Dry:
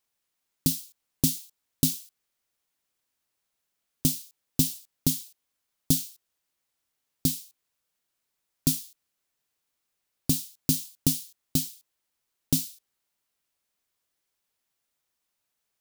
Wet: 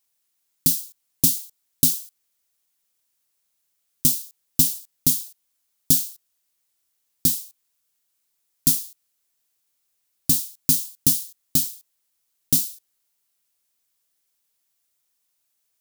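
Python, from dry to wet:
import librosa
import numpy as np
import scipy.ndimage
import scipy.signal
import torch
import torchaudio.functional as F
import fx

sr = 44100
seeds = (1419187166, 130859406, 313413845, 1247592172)

y = fx.high_shelf(x, sr, hz=4200.0, db=11.0)
y = y * librosa.db_to_amplitude(-1.5)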